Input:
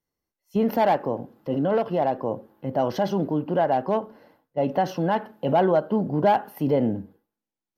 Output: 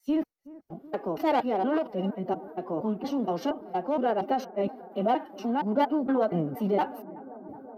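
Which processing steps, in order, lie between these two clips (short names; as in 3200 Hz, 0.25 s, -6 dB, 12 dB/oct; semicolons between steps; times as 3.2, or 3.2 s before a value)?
slices in reverse order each 0.234 s, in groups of 3; analogue delay 0.374 s, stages 4096, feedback 83%, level -20 dB; formant-preserving pitch shift +6 st; gain -4 dB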